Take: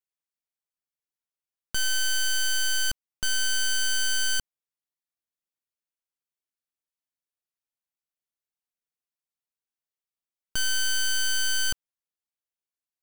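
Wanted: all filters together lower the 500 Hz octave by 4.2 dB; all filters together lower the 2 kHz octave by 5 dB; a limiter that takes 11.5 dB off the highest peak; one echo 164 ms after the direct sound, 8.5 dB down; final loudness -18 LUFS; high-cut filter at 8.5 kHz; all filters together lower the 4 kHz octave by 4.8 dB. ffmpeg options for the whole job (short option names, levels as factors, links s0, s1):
-af "lowpass=8500,equalizer=f=500:t=o:g=-4.5,equalizer=f=2000:t=o:g=-7,equalizer=f=4000:t=o:g=-3.5,alimiter=level_in=2.82:limit=0.0631:level=0:latency=1,volume=0.355,aecho=1:1:164:0.376,volume=15"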